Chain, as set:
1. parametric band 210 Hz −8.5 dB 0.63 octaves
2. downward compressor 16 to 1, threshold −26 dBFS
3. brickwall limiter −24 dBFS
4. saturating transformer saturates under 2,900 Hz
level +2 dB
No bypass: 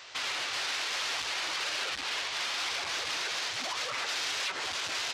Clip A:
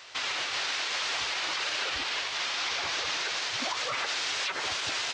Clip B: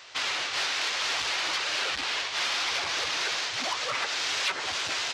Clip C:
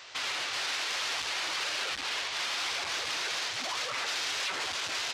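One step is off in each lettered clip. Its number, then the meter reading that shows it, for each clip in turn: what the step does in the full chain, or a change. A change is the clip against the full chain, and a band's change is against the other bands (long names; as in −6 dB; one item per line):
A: 4, change in crest factor −2.0 dB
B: 3, average gain reduction 3.0 dB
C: 2, average gain reduction 4.0 dB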